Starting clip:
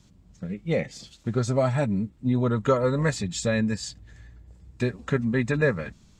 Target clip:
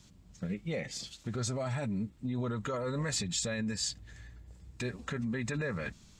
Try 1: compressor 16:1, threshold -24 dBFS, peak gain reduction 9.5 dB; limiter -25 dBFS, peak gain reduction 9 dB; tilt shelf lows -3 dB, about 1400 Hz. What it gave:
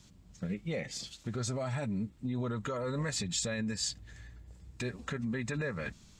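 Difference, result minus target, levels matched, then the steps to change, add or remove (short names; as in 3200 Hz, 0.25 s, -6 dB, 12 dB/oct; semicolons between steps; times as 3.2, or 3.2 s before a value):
compressor: peak gain reduction +9.5 dB
remove: compressor 16:1, threshold -24 dBFS, peak gain reduction 9.5 dB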